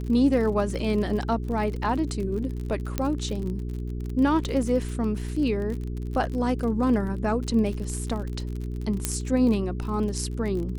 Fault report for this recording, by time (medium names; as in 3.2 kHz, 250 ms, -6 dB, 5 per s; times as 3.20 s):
crackle 45 per s -32 dBFS
hum 60 Hz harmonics 7 -31 dBFS
2.98 s: pop -11 dBFS
9.05 s: pop -8 dBFS